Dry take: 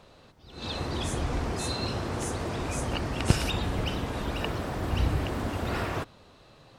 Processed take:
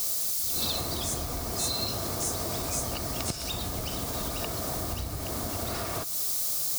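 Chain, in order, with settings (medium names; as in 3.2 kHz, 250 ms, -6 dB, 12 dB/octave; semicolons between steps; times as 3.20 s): added noise blue -43 dBFS; compression 12:1, threshold -35 dBFS, peak gain reduction 21 dB; resonant high shelf 3.5 kHz +9.5 dB, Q 1.5; small resonant body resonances 670/1200/2200 Hz, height 8 dB, ringing for 35 ms; trim +4 dB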